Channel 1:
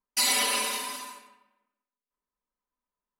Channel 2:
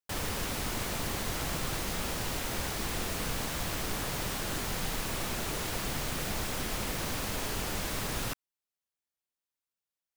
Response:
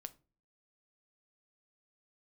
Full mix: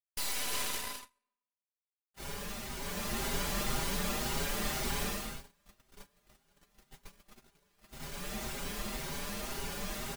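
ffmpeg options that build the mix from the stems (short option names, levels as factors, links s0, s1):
-filter_complex "[0:a]aeval=exprs='0.237*(cos(1*acos(clip(val(0)/0.237,-1,1)))-cos(1*PI/2))+0.0944*(cos(8*acos(clip(val(0)/0.237,-1,1)))-cos(8*PI/2))':c=same,volume=0.15[s0];[1:a]aecho=1:1:5:0.6,asplit=2[s1][s2];[s2]adelay=6.1,afreqshift=1.9[s3];[s1][s3]amix=inputs=2:normalize=1,adelay=2050,volume=1.12,afade=t=in:st=2.75:d=0.53:silence=0.446684,afade=t=out:st=5.03:d=0.35:silence=0.237137,afade=t=in:st=7.78:d=0.64:silence=0.421697[s4];[s0][s4]amix=inputs=2:normalize=0,agate=range=0.0501:threshold=0.00316:ratio=16:detection=peak,dynaudnorm=f=430:g=3:m=2.51"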